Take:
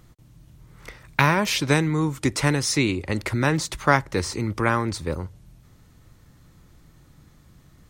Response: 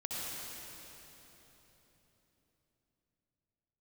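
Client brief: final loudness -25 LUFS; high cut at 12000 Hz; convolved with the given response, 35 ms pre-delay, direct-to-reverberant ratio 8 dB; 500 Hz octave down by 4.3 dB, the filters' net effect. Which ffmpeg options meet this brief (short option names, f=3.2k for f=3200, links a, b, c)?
-filter_complex "[0:a]lowpass=12k,equalizer=f=500:t=o:g=-5.5,asplit=2[a][b];[1:a]atrim=start_sample=2205,adelay=35[c];[b][c]afir=irnorm=-1:irlink=0,volume=-11dB[d];[a][d]amix=inputs=2:normalize=0,volume=-1.5dB"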